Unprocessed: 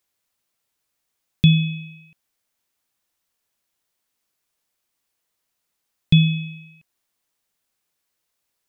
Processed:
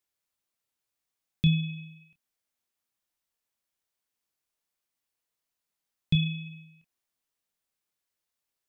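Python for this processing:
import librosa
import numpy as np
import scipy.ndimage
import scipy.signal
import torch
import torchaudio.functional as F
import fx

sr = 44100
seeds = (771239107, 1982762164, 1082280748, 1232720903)

y = fx.chorus_voices(x, sr, voices=4, hz=0.54, base_ms=27, depth_ms=2.6, mix_pct=25)
y = y * 10.0 ** (-7.0 / 20.0)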